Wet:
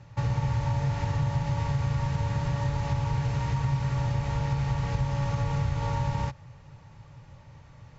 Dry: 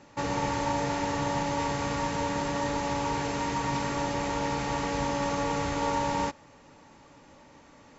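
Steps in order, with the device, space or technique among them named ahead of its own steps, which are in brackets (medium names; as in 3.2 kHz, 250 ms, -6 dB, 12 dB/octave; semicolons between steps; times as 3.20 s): jukebox (low-pass 5.9 kHz 12 dB/octave; resonant low shelf 180 Hz +13 dB, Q 3; compression 3:1, threshold -22 dBFS, peak gain reduction 6.5 dB); trim -2.5 dB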